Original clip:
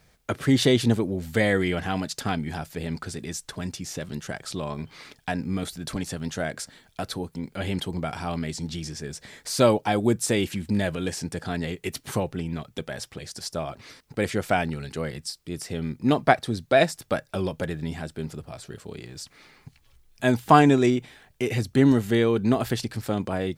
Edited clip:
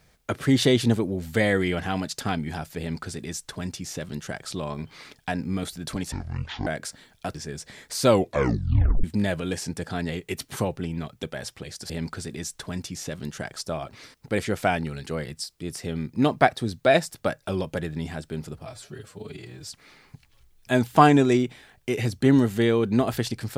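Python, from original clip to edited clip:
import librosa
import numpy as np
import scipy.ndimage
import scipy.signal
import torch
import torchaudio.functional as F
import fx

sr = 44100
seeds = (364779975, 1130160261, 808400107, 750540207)

y = fx.edit(x, sr, fx.duplicate(start_s=2.79, length_s=1.69, to_s=13.45),
    fx.speed_span(start_s=6.12, length_s=0.29, speed=0.53),
    fx.cut(start_s=7.09, length_s=1.81),
    fx.tape_stop(start_s=9.64, length_s=0.95),
    fx.stretch_span(start_s=18.52, length_s=0.67, factor=1.5), tone=tone)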